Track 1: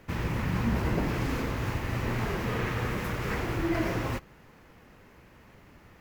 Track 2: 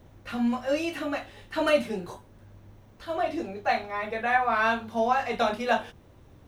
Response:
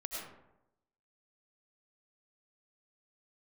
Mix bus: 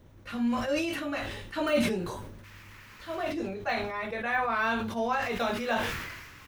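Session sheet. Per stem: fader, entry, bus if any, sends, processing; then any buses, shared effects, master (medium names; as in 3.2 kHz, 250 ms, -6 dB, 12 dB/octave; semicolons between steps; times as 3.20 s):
-9.5 dB, 2.35 s, muted 3.32–5.22 s, no send, Bessel high-pass 1.7 kHz, order 8
-2.5 dB, 0.00 s, no send, de-esser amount 90%; peaking EQ 740 Hz -6 dB 0.39 oct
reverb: none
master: decay stretcher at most 40 dB/s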